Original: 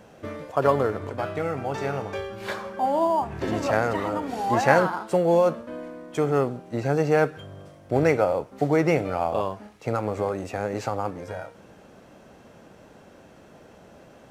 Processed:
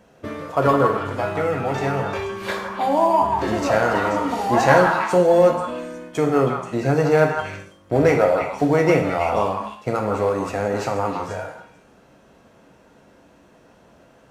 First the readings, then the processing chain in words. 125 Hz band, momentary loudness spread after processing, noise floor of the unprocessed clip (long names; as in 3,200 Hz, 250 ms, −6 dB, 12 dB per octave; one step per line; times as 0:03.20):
+4.5 dB, 12 LU, −51 dBFS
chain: echo through a band-pass that steps 161 ms, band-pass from 1,100 Hz, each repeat 1.4 octaves, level −2 dB
in parallel at −3 dB: soft clipping −14.5 dBFS, distortion −15 dB
on the sum: noise gate −36 dBFS, range −8 dB
reverb whose tail is shaped and stops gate 170 ms falling, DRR 3 dB
level −1 dB